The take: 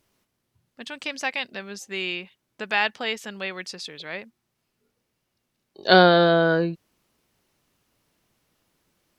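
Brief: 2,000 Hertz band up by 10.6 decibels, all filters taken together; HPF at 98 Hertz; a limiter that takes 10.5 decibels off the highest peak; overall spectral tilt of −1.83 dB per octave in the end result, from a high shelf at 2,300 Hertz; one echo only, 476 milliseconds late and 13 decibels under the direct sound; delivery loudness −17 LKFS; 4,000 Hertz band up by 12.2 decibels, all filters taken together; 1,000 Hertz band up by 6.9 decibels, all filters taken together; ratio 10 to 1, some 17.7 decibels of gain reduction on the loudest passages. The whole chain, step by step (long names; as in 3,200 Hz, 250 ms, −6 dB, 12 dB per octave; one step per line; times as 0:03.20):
high-pass filter 98 Hz
parametric band 1,000 Hz +7 dB
parametric band 2,000 Hz +7 dB
high-shelf EQ 2,300 Hz +7 dB
parametric band 4,000 Hz +6 dB
downward compressor 10 to 1, threshold −20 dBFS
brickwall limiter −15.5 dBFS
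single-tap delay 476 ms −13 dB
level +11 dB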